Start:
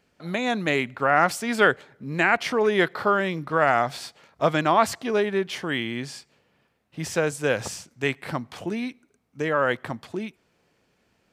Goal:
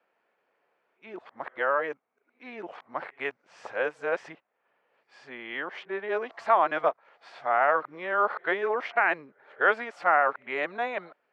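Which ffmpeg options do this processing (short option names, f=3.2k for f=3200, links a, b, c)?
-filter_complex "[0:a]areverse,highpass=160,lowpass=4.4k,acrossover=split=450 2200:gain=0.0794 1 0.141[a][b][c];[a][b][c]amix=inputs=3:normalize=0,volume=-1dB"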